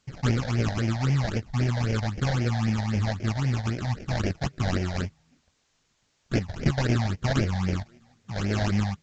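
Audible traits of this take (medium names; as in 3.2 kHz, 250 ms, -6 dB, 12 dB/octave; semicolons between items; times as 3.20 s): aliases and images of a low sample rate 1 kHz, jitter 20%; phasing stages 8, 3.8 Hz, lowest notch 340–1200 Hz; a quantiser's noise floor 12-bit, dither triangular; A-law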